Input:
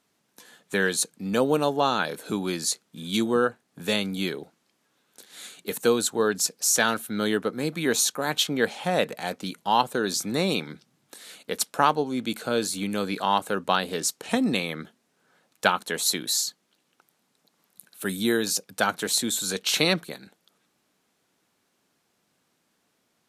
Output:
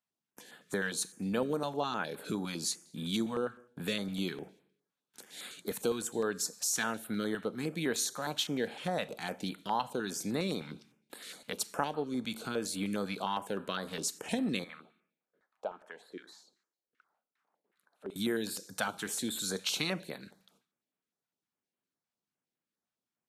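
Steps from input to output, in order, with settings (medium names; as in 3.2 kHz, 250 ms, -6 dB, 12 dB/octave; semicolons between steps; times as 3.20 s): gate with hold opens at -53 dBFS; treble shelf 7 kHz -4.5 dB; compression 2:1, threshold -35 dBFS, peak gain reduction 11.5 dB; 14.64–18.16 s: LFO band-pass saw down 2.6 Hz 350–2000 Hz; Schroeder reverb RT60 0.7 s, combs from 28 ms, DRR 16.5 dB; step-sequenced notch 9.8 Hz 370–6000 Hz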